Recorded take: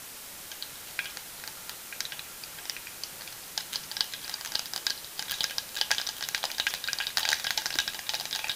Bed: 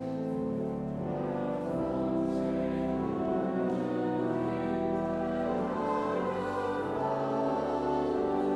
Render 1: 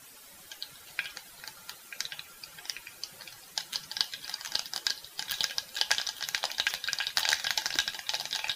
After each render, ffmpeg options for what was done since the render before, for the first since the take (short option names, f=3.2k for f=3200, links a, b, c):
-af "afftdn=nr=12:nf=-44"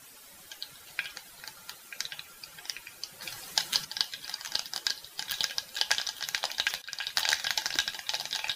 -filter_complex "[0:a]asettb=1/sr,asplit=3[a][b][c];[a]atrim=end=3.224[d];[b]atrim=start=3.22:end=3.85,asetpts=PTS-STARTPTS,afade=t=in:d=0.004:c=qsin,afade=t=out:st=0.626:d=0.004:c=qsin,acontrast=82[e];[c]atrim=start=3.846[f];[d][e]acrossfade=d=0.004:c1=hsin:c2=qsin[g];[g][f]acrossfade=d=0.004:c1=qsin:c2=hsin,asplit=2[h][i];[h]atrim=end=6.82,asetpts=PTS-STARTPTS,afade=t=out:st=6.816:d=0.004:c=hsin:silence=0.141254[j];[i]atrim=start=6.82,asetpts=PTS-STARTPTS,afade=t=in:d=0.43:c=qsin:silence=0.141254[k];[j][k]concat=n=2:v=0:a=1"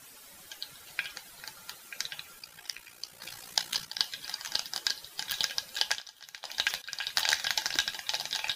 -filter_complex "[0:a]asettb=1/sr,asplit=3[a][b][c];[a]atrim=end=2.394[d];[b]atrim=start=2.39:end=3.99,asetpts=PTS-STARTPTS,afade=t=in:d=0.004:c=qsin,afade=t=out:st=1.596:d=0.004:c=qsin,tremolo=f=59:d=0.71[e];[c]atrim=start=3.986[f];[d][e]acrossfade=d=0.004:c1=hsin:c2=qsin[g];[g][f]acrossfade=d=0.004:c1=qsin:c2=hsin,asplit=3[h][i][j];[h]atrim=end=6.02,asetpts=PTS-STARTPTS,afade=t=out:st=5.85:d=0.17:silence=0.199526[k];[i]atrim=start=6.02:end=6.42,asetpts=PTS-STARTPTS,volume=-14dB[l];[j]atrim=start=6.42,asetpts=PTS-STARTPTS,afade=t=in:d=0.17:silence=0.199526[m];[k][l][m]concat=n=3:v=0:a=1"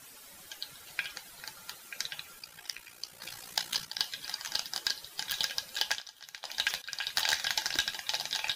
-af "asoftclip=type=tanh:threshold=-13.5dB"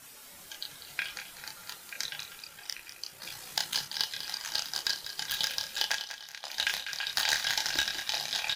-filter_complex "[0:a]asplit=2[a][b];[b]adelay=28,volume=-4.5dB[c];[a][c]amix=inputs=2:normalize=0,asplit=2[d][e];[e]aecho=0:1:197|394|591:0.282|0.0733|0.0191[f];[d][f]amix=inputs=2:normalize=0"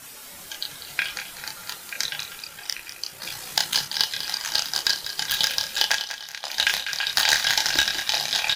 -af "volume=8.5dB"